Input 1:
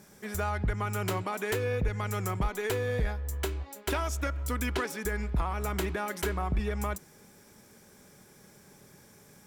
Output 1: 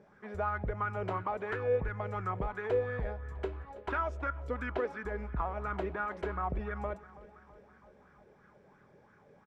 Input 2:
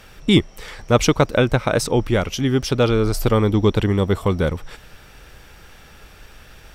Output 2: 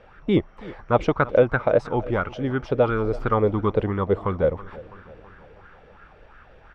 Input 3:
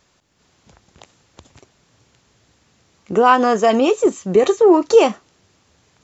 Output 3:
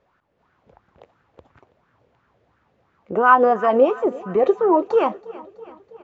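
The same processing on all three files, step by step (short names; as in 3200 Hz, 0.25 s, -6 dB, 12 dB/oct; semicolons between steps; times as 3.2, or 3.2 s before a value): LPF 2100 Hz 12 dB/oct; on a send: feedback echo 0.327 s, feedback 60%, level -19.5 dB; on the sum: LFO bell 2.9 Hz 480–1500 Hz +13 dB; gain -7.5 dB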